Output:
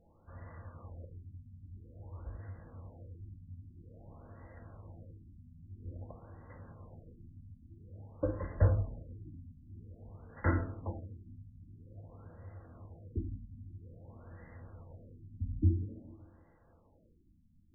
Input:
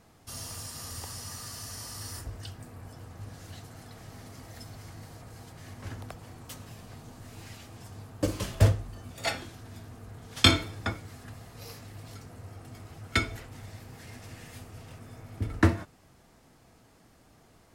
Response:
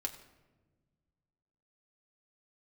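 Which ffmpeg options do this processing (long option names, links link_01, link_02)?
-filter_complex "[0:a]highshelf=frequency=2300:width_type=q:width=1.5:gain=7,areverse,acompressor=mode=upward:threshold=-56dB:ratio=2.5,areverse,asoftclip=type=hard:threshold=-10.5dB[link_01];[1:a]atrim=start_sample=2205,asetrate=79380,aresample=44100[link_02];[link_01][link_02]afir=irnorm=-1:irlink=0,afftfilt=real='re*lt(b*sr/1024,280*pow(2100/280,0.5+0.5*sin(2*PI*0.5*pts/sr)))':imag='im*lt(b*sr/1024,280*pow(2100/280,0.5+0.5*sin(2*PI*0.5*pts/sr)))':win_size=1024:overlap=0.75"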